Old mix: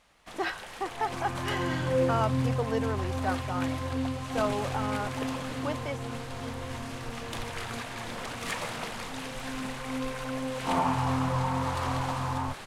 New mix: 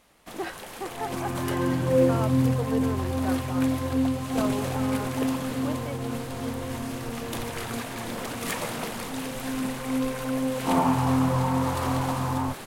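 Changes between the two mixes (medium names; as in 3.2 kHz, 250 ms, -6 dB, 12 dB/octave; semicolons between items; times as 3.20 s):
speech -6.5 dB; first sound: remove distance through air 52 m; master: add peaking EQ 280 Hz +8 dB 2.3 oct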